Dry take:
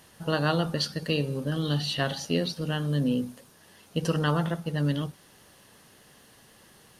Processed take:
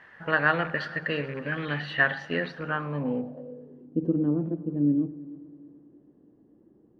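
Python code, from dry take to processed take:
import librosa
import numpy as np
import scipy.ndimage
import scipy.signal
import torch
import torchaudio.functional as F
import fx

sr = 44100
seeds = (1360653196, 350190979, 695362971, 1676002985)

y = fx.rattle_buzz(x, sr, strikes_db=-30.0, level_db=-34.0)
y = fx.low_shelf(y, sr, hz=250.0, db=-9.5)
y = fx.echo_heads(y, sr, ms=109, heads='first and third', feedback_pct=57, wet_db=-21.0)
y = fx.filter_sweep_lowpass(y, sr, from_hz=1800.0, to_hz=310.0, start_s=2.5, end_s=3.94, q=5.0)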